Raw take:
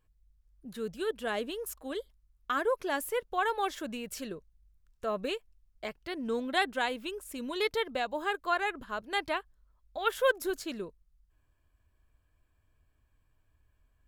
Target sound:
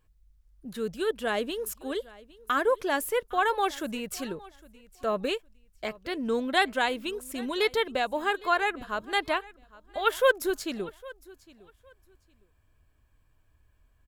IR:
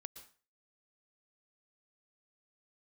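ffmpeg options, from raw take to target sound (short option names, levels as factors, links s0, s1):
-af "aecho=1:1:809|1618:0.0841|0.0177,volume=1.68"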